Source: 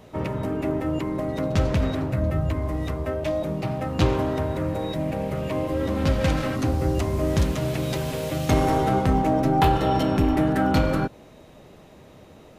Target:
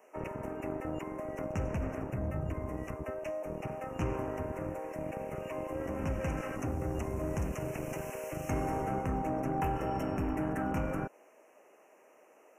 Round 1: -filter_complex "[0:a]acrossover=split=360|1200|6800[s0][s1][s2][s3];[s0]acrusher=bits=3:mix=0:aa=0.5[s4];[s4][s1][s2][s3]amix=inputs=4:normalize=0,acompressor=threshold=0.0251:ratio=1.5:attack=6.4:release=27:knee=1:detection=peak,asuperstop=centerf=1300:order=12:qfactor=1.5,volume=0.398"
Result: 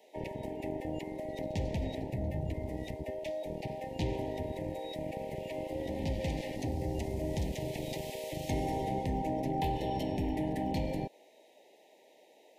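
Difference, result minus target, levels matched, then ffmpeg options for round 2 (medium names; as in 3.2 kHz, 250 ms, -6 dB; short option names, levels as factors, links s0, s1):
4 kHz band +10.0 dB
-filter_complex "[0:a]acrossover=split=360|1200|6800[s0][s1][s2][s3];[s0]acrusher=bits=3:mix=0:aa=0.5[s4];[s4][s1][s2][s3]amix=inputs=4:normalize=0,acompressor=threshold=0.0251:ratio=1.5:attack=6.4:release=27:knee=1:detection=peak,asuperstop=centerf=4000:order=12:qfactor=1.5,volume=0.398"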